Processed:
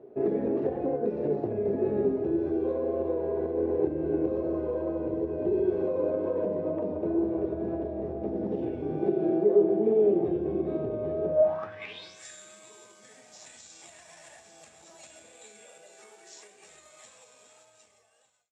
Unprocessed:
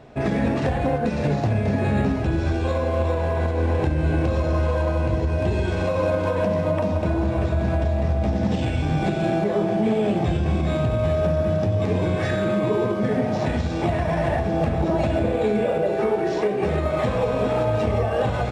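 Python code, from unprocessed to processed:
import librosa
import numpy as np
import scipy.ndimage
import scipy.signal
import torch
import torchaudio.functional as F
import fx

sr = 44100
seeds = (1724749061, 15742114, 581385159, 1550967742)

y = fx.fade_out_tail(x, sr, length_s=2.17)
y = fx.wow_flutter(y, sr, seeds[0], rate_hz=2.1, depth_cents=21.0)
y = fx.filter_sweep_bandpass(y, sr, from_hz=390.0, to_hz=7400.0, start_s=11.27, end_s=12.21, q=6.1)
y = y * 10.0 ** (6.5 / 20.0)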